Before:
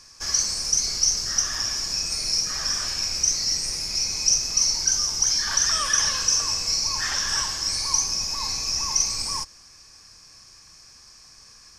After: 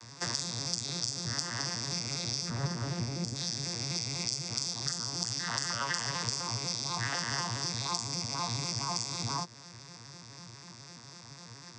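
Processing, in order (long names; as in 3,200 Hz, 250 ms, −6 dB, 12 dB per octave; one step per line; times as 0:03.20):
vocoder with an arpeggio as carrier minor triad, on A#2, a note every 83 ms
downward compressor 4 to 1, threshold −31 dBFS, peak gain reduction 14 dB
0:02.50–0:03.36: tilt shelving filter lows +7 dB, about 820 Hz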